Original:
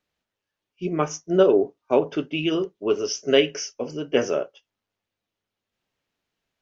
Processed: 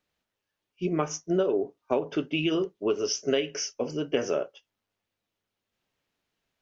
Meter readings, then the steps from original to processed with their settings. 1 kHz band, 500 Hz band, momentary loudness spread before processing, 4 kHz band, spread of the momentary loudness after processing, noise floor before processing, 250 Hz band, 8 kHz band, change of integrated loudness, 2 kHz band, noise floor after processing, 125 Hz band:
-5.5 dB, -6.5 dB, 12 LU, -5.0 dB, 5 LU, under -85 dBFS, -4.0 dB, n/a, -5.5 dB, -5.5 dB, -85 dBFS, -3.0 dB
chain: compressor 6:1, threshold -22 dBFS, peak gain reduction 11 dB

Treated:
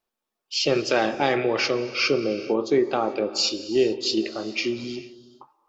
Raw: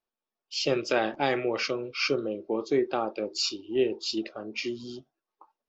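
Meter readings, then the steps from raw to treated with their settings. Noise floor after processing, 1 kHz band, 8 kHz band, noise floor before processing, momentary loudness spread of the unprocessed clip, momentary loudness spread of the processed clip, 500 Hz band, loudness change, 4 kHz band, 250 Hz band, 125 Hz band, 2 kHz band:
-85 dBFS, +5.0 dB, n/a, under -85 dBFS, 9 LU, 6 LU, +5.0 dB, +5.5 dB, +6.0 dB, +5.5 dB, +5.5 dB, +5.0 dB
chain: in parallel at +1 dB: limiter -20.5 dBFS, peak gain reduction 7.5 dB; on the sum: non-linear reverb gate 0.47 s flat, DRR 12 dB

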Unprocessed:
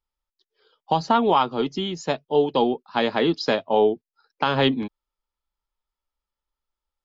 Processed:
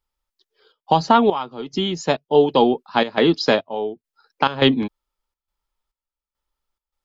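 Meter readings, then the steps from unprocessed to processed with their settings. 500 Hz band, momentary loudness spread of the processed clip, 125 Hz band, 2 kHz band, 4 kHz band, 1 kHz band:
+3.0 dB, 12 LU, +3.5 dB, +3.5 dB, +4.0 dB, +2.5 dB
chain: step gate "xxxxx.xxx...xxx." 104 bpm -12 dB; gain +5 dB

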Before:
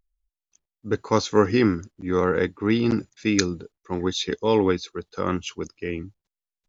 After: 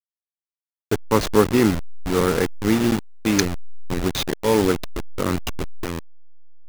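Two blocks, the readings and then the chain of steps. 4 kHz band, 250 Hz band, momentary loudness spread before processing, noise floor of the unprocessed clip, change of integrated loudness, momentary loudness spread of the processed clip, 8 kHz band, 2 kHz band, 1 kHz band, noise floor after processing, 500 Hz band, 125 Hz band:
+2.0 dB, +2.0 dB, 13 LU, under -85 dBFS, +2.0 dB, 14 LU, n/a, +2.0 dB, +2.0 dB, under -85 dBFS, +1.5 dB, +3.0 dB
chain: level-crossing sampler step -21 dBFS; gain +2.5 dB

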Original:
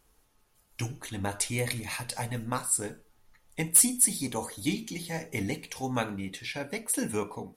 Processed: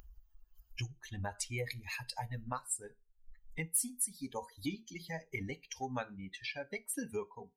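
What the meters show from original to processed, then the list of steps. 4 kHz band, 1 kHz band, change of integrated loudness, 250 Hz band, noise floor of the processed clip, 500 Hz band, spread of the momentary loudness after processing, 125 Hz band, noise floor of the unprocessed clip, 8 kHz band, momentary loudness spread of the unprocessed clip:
-8.5 dB, -7.0 dB, -11.0 dB, -10.5 dB, -70 dBFS, -8.0 dB, 10 LU, -8.0 dB, -67 dBFS, -12.5 dB, 15 LU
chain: per-bin expansion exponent 2; resonator 68 Hz, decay 0.21 s, harmonics all, mix 30%; upward compressor, threshold -51 dBFS; bell 3500 Hz -5.5 dB 0.33 oct; compressor 2.5:1, threshold -56 dBFS, peak gain reduction 23.5 dB; bell 190 Hz -2.5 dB 0.77 oct; gain +13 dB

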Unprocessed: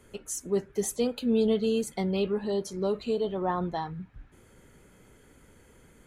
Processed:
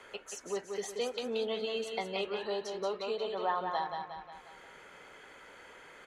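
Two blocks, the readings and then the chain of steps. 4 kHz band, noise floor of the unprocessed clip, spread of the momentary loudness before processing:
+1.0 dB, -58 dBFS, 10 LU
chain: three-band isolator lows -22 dB, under 540 Hz, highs -20 dB, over 5100 Hz; on a send: feedback echo 0.179 s, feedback 40%, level -6.5 dB; on the sum: three-band squash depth 40%; gain +1.5 dB

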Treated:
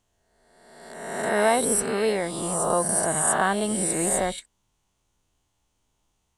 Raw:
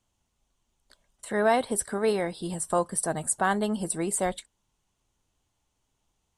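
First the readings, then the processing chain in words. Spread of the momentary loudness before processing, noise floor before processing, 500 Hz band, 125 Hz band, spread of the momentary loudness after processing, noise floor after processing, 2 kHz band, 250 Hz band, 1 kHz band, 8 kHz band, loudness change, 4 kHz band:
8 LU, -78 dBFS, +3.0 dB, +2.0 dB, 9 LU, -74 dBFS, +4.5 dB, +2.0 dB, +3.0 dB, +7.0 dB, +4.0 dB, +5.5 dB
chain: spectral swells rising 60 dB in 1.31 s

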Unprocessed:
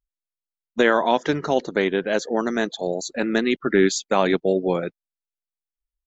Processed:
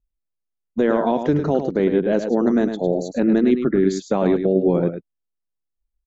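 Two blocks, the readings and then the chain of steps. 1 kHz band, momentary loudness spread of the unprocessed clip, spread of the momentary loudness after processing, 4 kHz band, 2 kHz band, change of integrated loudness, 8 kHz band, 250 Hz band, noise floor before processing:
-3.0 dB, 7 LU, 5 LU, -10.0 dB, -8.5 dB, +2.5 dB, n/a, +5.5 dB, under -85 dBFS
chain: tilt shelf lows +10 dB, about 800 Hz; limiter -8.5 dBFS, peak gain reduction 8 dB; on a send: echo 0.105 s -8 dB

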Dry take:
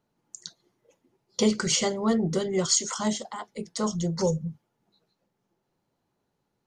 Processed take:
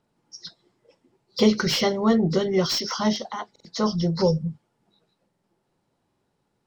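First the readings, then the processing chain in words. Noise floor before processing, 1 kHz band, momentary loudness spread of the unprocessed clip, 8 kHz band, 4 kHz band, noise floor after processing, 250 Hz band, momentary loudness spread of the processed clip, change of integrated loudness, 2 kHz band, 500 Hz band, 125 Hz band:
-78 dBFS, +4.5 dB, 16 LU, -8.5 dB, +3.5 dB, -74 dBFS, +4.5 dB, 16 LU, +3.5 dB, +4.5 dB, +4.5 dB, +4.5 dB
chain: nonlinear frequency compression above 3600 Hz 1.5:1; stuck buffer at 3.51/5.3/6.07, samples 2048, times 2; slew limiter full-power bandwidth 210 Hz; gain +4.5 dB

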